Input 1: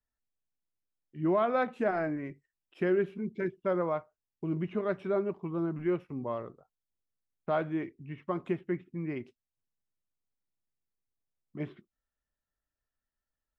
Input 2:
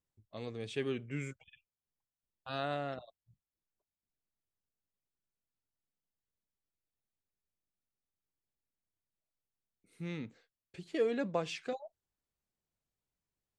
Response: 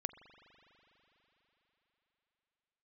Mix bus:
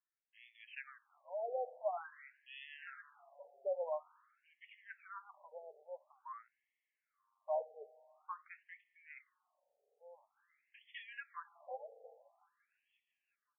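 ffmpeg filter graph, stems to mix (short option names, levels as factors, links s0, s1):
-filter_complex "[0:a]volume=0.355,asplit=2[s0][s1];[s1]volume=0.501[s2];[1:a]volume=0.501,asplit=4[s3][s4][s5][s6];[s4]volume=0.631[s7];[s5]volume=0.141[s8];[s6]apad=whole_len=599242[s9];[s0][s9]sidechaincompress=threshold=0.00178:ratio=8:attack=16:release=516[s10];[2:a]atrim=start_sample=2205[s11];[s2][s7]amix=inputs=2:normalize=0[s12];[s12][s11]afir=irnorm=-1:irlink=0[s13];[s8]aecho=0:1:354|708|1062|1416|1770|2124|2478|2832|3186:1|0.57|0.325|0.185|0.106|0.0602|0.0343|0.0195|0.0111[s14];[s10][s3][s13][s14]amix=inputs=4:normalize=0,afftfilt=real='re*between(b*sr/1024,590*pow(2500/590,0.5+0.5*sin(2*PI*0.48*pts/sr))/1.41,590*pow(2500/590,0.5+0.5*sin(2*PI*0.48*pts/sr))*1.41)':imag='im*between(b*sr/1024,590*pow(2500/590,0.5+0.5*sin(2*PI*0.48*pts/sr))/1.41,590*pow(2500/590,0.5+0.5*sin(2*PI*0.48*pts/sr))*1.41)':win_size=1024:overlap=0.75"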